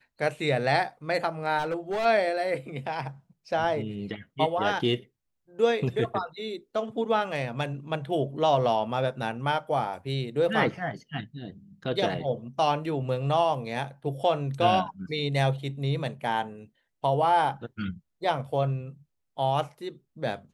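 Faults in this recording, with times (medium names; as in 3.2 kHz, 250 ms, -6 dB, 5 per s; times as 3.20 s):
1.58–2.06 s: clipped -25 dBFS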